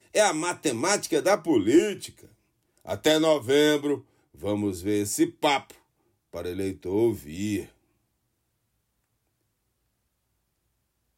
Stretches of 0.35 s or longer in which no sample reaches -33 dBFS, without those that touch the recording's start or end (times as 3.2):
2.07–2.87
3.98–4.43
5.7–6.34